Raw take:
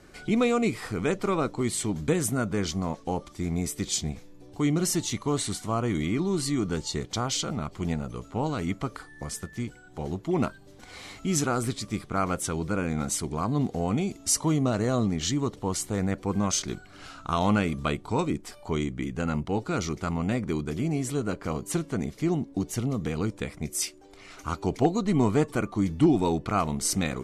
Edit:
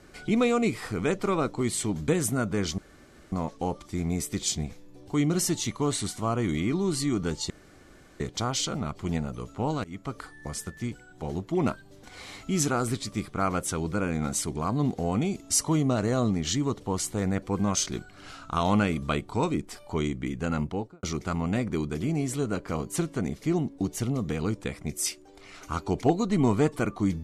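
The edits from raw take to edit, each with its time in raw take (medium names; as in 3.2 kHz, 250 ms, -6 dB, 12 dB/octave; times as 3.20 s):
2.78 s: insert room tone 0.54 s
6.96 s: insert room tone 0.70 s
8.60–8.98 s: fade in, from -21 dB
19.39–19.79 s: studio fade out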